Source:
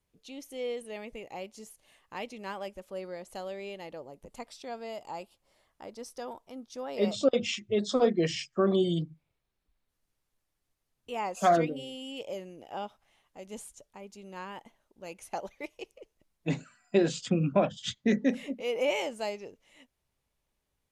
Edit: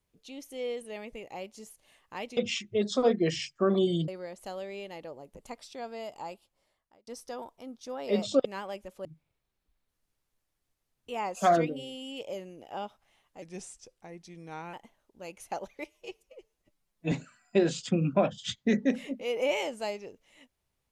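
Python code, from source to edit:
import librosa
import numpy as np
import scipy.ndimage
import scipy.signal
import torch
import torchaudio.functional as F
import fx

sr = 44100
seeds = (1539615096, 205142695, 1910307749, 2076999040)

y = fx.edit(x, sr, fx.swap(start_s=2.37, length_s=0.6, other_s=7.34, other_length_s=1.71),
    fx.fade_out_span(start_s=5.1, length_s=0.86),
    fx.speed_span(start_s=13.42, length_s=1.13, speed=0.86),
    fx.stretch_span(start_s=15.66, length_s=0.85, factor=1.5), tone=tone)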